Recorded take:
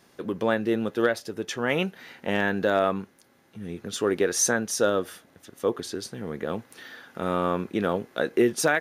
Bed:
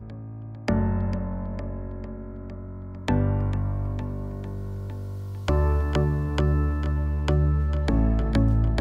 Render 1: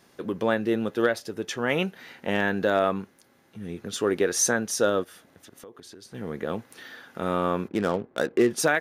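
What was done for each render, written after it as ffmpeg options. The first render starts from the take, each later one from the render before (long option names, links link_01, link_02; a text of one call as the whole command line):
ffmpeg -i in.wav -filter_complex "[0:a]asplit=3[link_01][link_02][link_03];[link_01]afade=type=out:start_time=5.03:duration=0.02[link_04];[link_02]acompressor=threshold=-44dB:ratio=5:attack=3.2:release=140:knee=1:detection=peak,afade=type=in:start_time=5.03:duration=0.02,afade=type=out:start_time=6.13:duration=0.02[link_05];[link_03]afade=type=in:start_time=6.13:duration=0.02[link_06];[link_04][link_05][link_06]amix=inputs=3:normalize=0,asplit=3[link_07][link_08][link_09];[link_07]afade=type=out:start_time=7.67:duration=0.02[link_10];[link_08]adynamicsmooth=sensitivity=7.5:basefreq=600,afade=type=in:start_time=7.67:duration=0.02,afade=type=out:start_time=8.49:duration=0.02[link_11];[link_09]afade=type=in:start_time=8.49:duration=0.02[link_12];[link_10][link_11][link_12]amix=inputs=3:normalize=0" out.wav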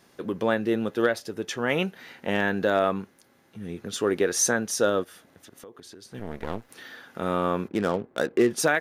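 ffmpeg -i in.wav -filter_complex "[0:a]asettb=1/sr,asplit=3[link_01][link_02][link_03];[link_01]atrim=end=6.194[link_04];[link_02]atrim=start=6.19:end=6.69,asetpts=PTS-STARTPTS,afade=type=in:duration=0.004:curve=qsin,afade=type=out:start_time=0.496:duration=0.004:curve=qsin,aeval=exprs='max(val(0),0)':channel_layout=same[link_05];[link_03]atrim=start=6.686[link_06];[link_04][link_05]acrossfade=duration=0.004:curve1=hsin:curve2=qsin[link_07];[link_07][link_06]acrossfade=duration=0.004:curve1=qsin:curve2=hsin" out.wav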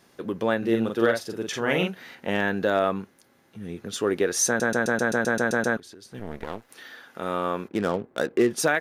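ffmpeg -i in.wav -filter_complex "[0:a]asettb=1/sr,asplit=3[link_01][link_02][link_03];[link_01]atrim=end=0.584[link_04];[link_02]atrim=start=0.58:end=2.15,asetpts=PTS-STARTPTS,afade=type=in:duration=0.004:curve=qsin,afade=type=out:start_time=1.566:duration=0.004:curve=qsin,asplit=2[link_05][link_06];[link_06]adelay=44,volume=-3.5dB[link_07];[link_05][link_07]amix=inputs=2:normalize=0,atrim=end_sample=69237[link_08];[link_03]atrim=start=2.146[link_09];[link_04][link_08]acrossfade=duration=0.004:curve1=hsin:curve2=qsin[link_10];[link_10][link_09]acrossfade=duration=0.004:curve1=qsin:curve2=hsin,asettb=1/sr,asplit=3[link_11][link_12][link_13];[link_11]atrim=end=6.444[link_14];[link_12]atrim=start=6.44:end=7.75,asetpts=PTS-STARTPTS,afade=type=in:duration=0.004:curve=qsin,afade=type=out:start_time=1.306:duration=0.004:curve=qsin,lowshelf=frequency=260:gain=-8[link_15];[link_13]atrim=start=7.746[link_16];[link_14][link_15]acrossfade=duration=0.004:curve1=hsin:curve2=qsin[link_17];[link_17][link_16]acrossfade=duration=0.004:curve1=qsin:curve2=hsin,asplit=11[link_18][link_19][link_20][link_21][link_22][link_23][link_24][link_25][link_26][link_27][link_28];[link_18]atrim=end=4.602[link_29];[link_19]atrim=start=4.468:end=4.602[link_30];[link_20]atrim=start=4.468:end=4.602[link_31];[link_21]atrim=start=4.468:end=4.602[link_32];[link_22]atrim=start=4.468:end=4.602[link_33];[link_23]atrim=start=4.468:end=4.602[link_34];[link_24]atrim=start=4.468:end=4.602[link_35];[link_25]atrim=start=4.468:end=4.602[link_36];[link_26]atrim=start=4.468:end=4.602[link_37];[link_27]atrim=start=4.468:end=4.602[link_38];[link_28]atrim=start=5.768[link_39];[link_29][link_30]acrossfade=duration=0.004:curve1=hsin:curve2=hsin[link_40];[link_40][link_31]acrossfade=duration=0.004:curve1=hsin:curve2=hsin[link_41];[link_41][link_32]acrossfade=duration=0.004:curve1=hsin:curve2=hsin[link_42];[link_42][link_33]acrossfade=duration=0.004:curve1=hsin:curve2=hsin[link_43];[link_43][link_34]acrossfade=duration=0.004:curve1=hsin:curve2=hsin[link_44];[link_44][link_35]acrossfade=duration=0.004:curve1=hsin:curve2=hsin[link_45];[link_45][link_36]acrossfade=duration=0.004:curve1=hsin:curve2=hsin[link_46];[link_46][link_37]acrossfade=duration=0.004:curve1=hsin:curve2=hsin[link_47];[link_47][link_38]acrossfade=duration=0.004:curve1=hsin:curve2=hsin[link_48];[link_48][link_39]acrossfade=duration=0.004:curve1=hsin:curve2=hsin" out.wav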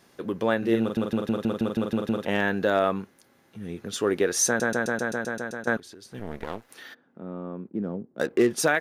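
ffmpeg -i in.wav -filter_complex "[0:a]asplit=3[link_01][link_02][link_03];[link_01]afade=type=out:start_time=6.93:duration=0.02[link_04];[link_02]bandpass=frequency=200:width_type=q:width=1.4,afade=type=in:start_time=6.93:duration=0.02,afade=type=out:start_time=8.19:duration=0.02[link_05];[link_03]afade=type=in:start_time=8.19:duration=0.02[link_06];[link_04][link_05][link_06]amix=inputs=3:normalize=0,asplit=11[link_07][link_08][link_09][link_10][link_11][link_12][link_13][link_14][link_15][link_16][link_17];[link_07]atrim=end=0.972[link_18];[link_08]atrim=start=0.808:end=0.972[link_19];[link_09]atrim=start=0.808:end=0.972[link_20];[link_10]atrim=start=0.808:end=0.972[link_21];[link_11]atrim=start=0.808:end=0.972[link_22];[link_12]atrim=start=0.808:end=0.972[link_23];[link_13]atrim=start=0.808:end=0.972[link_24];[link_14]atrim=start=0.808:end=0.972[link_25];[link_15]atrim=start=0.808:end=0.972[link_26];[link_16]atrim=start=2.248:end=5.67,asetpts=PTS-STARTPTS,afade=type=out:start_time=2.212:duration=1.21:silence=0.211349[link_27];[link_17]atrim=start=5.67,asetpts=PTS-STARTPTS,afade=type=in:duration=0.004:curve=hsin:silence=0.211349[link_28];[link_18][link_19]acrossfade=duration=0.004:curve1=hsin:curve2=hsin[link_29];[link_29][link_20]acrossfade=duration=0.004:curve1=hsin:curve2=hsin[link_30];[link_30][link_21]acrossfade=duration=0.004:curve1=hsin:curve2=hsin[link_31];[link_31][link_22]acrossfade=duration=0.004:curve1=hsin:curve2=hsin[link_32];[link_32][link_23]acrossfade=duration=0.004:curve1=hsin:curve2=hsin[link_33];[link_33][link_24]acrossfade=duration=0.004:curve1=hsin:curve2=hsin[link_34];[link_34][link_25]acrossfade=duration=0.004:curve1=hsin:curve2=hsin[link_35];[link_35][link_26]acrossfade=duration=0.004:curve1=hsin:curve2=hsin[link_36];[link_27][link_28]concat=n=2:v=0:a=1[link_37];[link_36][link_37]acrossfade=duration=0.004:curve1=hsin:curve2=hsin" out.wav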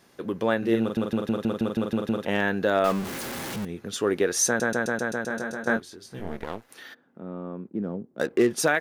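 ffmpeg -i in.wav -filter_complex "[0:a]asettb=1/sr,asplit=3[link_01][link_02][link_03];[link_01]atrim=end=2.844[link_04];[link_02]atrim=start=2.84:end=3.65,asetpts=PTS-STARTPTS,afade=type=in:duration=0.004:curve=qsin,afade=type=out:start_time=0.806:duration=0.004:curve=qsin,aeval=exprs='val(0)+0.5*0.0398*sgn(val(0))':channel_layout=same[link_05];[link_03]atrim=start=3.646[link_06];[link_04][link_05]acrossfade=duration=0.004:curve1=hsin:curve2=qsin[link_07];[link_07][link_06]acrossfade=duration=0.004:curve1=qsin:curve2=hsin,asettb=1/sr,asplit=3[link_08][link_09][link_10];[link_08]atrim=end=5.284[link_11];[link_09]atrim=start=5.28:end=6.37,asetpts=PTS-STARTPTS,afade=type=in:duration=0.004:curve=qsin,afade=type=out:start_time=1.086:duration=0.004:curve=qsin,asplit=2[link_12][link_13];[link_13]adelay=22,volume=-4dB[link_14];[link_12][link_14]amix=inputs=2:normalize=0,atrim=end_sample=48069[link_15];[link_10]atrim=start=6.366[link_16];[link_11][link_15]acrossfade=duration=0.004:curve1=hsin:curve2=qsin[link_17];[link_17][link_16]acrossfade=duration=0.004:curve1=qsin:curve2=hsin" out.wav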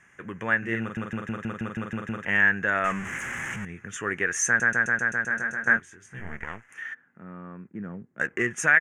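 ffmpeg -i in.wav -af "firequalizer=gain_entry='entry(130,0);entry(260,-9);entry(530,-11);entry(1800,11);entry(3000,-3);entry(4200,-28);entry(6500,2);entry(14000,-24)':delay=0.05:min_phase=1" out.wav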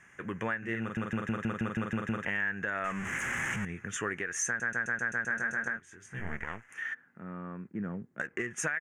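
ffmpeg -i in.wav -af "acompressor=threshold=-26dB:ratio=6,alimiter=limit=-20.5dB:level=0:latency=1:release=481" out.wav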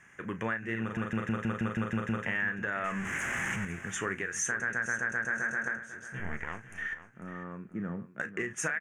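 ffmpeg -i in.wav -filter_complex "[0:a]asplit=2[link_01][link_02];[link_02]adelay=36,volume=-12.5dB[link_03];[link_01][link_03]amix=inputs=2:normalize=0,aecho=1:1:497|994|1491:0.211|0.0592|0.0166" out.wav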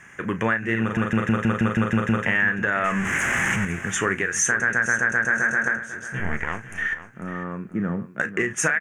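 ffmpeg -i in.wav -af "volume=10.5dB" out.wav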